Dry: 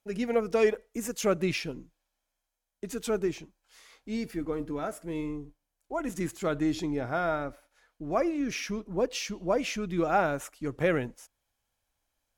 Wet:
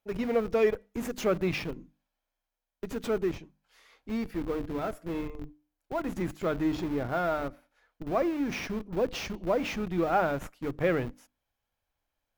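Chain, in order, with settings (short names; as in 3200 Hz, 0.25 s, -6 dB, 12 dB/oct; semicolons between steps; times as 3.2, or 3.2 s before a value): notches 50/100/150/200/250/300 Hz; in parallel at -7 dB: Schmitt trigger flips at -34.5 dBFS; on the sum: bell 8300 Hz -10 dB 1.5 oct; gain -1.5 dB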